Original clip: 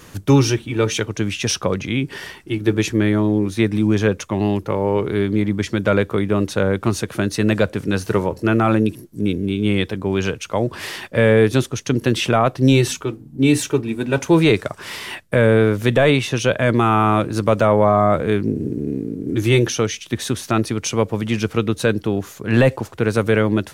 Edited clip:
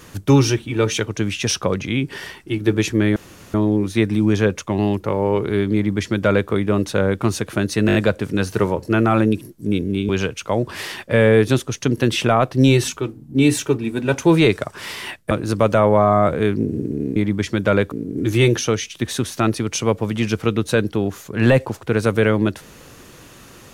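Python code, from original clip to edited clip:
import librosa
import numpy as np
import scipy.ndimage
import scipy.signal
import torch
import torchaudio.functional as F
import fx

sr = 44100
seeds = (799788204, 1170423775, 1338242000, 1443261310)

y = fx.edit(x, sr, fx.insert_room_tone(at_s=3.16, length_s=0.38),
    fx.duplicate(start_s=5.36, length_s=0.76, to_s=19.03),
    fx.stutter(start_s=7.49, slice_s=0.02, count=5),
    fx.cut(start_s=9.63, length_s=0.5),
    fx.cut(start_s=15.35, length_s=1.83), tone=tone)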